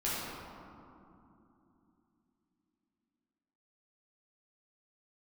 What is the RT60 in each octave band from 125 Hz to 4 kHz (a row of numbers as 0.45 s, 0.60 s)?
3.8 s, 4.5 s, 3.1 s, 2.8 s, 2.0 s, 1.1 s